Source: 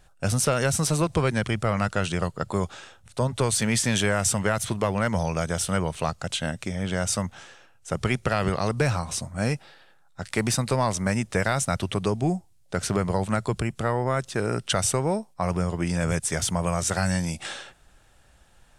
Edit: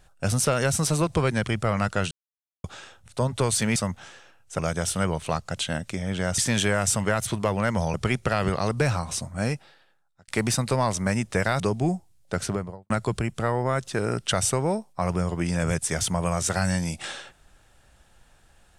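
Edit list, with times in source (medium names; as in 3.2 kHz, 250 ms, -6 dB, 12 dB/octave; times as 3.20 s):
2.11–2.64 s: mute
3.76–5.32 s: swap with 7.11–7.94 s
9.36–10.28 s: fade out
11.60–12.01 s: delete
12.75–13.31 s: studio fade out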